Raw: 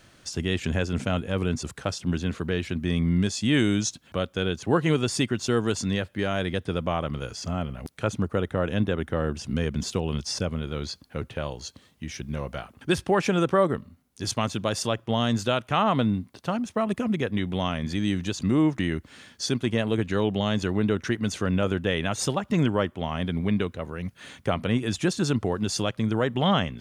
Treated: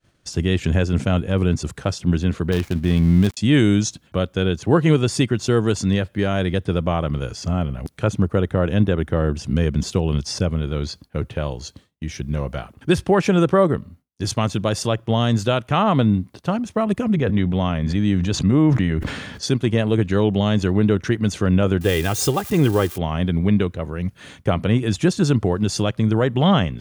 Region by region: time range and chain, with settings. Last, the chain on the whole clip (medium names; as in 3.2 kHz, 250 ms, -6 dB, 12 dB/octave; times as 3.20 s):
2.52–3.37 s: dead-time distortion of 0.17 ms + expander -41 dBFS
17.14–19.43 s: treble shelf 4.8 kHz -10.5 dB + band-stop 340 Hz, Q 6.9 + decay stretcher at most 35 dB/s
21.81–22.98 s: zero-crossing glitches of -26 dBFS + comb 2.5 ms, depth 45%
whole clip: bass shelf 440 Hz +7 dB; expander -41 dBFS; peaking EQ 240 Hz -4.5 dB 0.25 oct; trim +2.5 dB